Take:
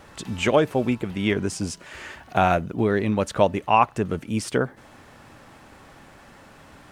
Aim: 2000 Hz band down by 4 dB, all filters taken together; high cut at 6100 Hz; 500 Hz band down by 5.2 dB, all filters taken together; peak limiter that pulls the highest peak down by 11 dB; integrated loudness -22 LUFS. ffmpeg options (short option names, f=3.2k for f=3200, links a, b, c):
-af "lowpass=6.1k,equalizer=f=500:t=o:g=-6.5,equalizer=f=2k:t=o:g=-5,volume=7.5dB,alimiter=limit=-9.5dB:level=0:latency=1"